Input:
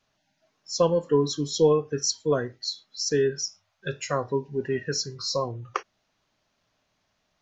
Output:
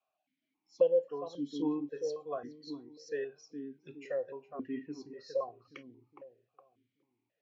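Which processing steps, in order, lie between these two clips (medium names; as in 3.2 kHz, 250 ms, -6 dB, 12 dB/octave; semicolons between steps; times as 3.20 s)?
filtered feedback delay 414 ms, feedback 40%, low-pass 830 Hz, level -6 dB; stepped vowel filter 3.7 Hz; trim -2 dB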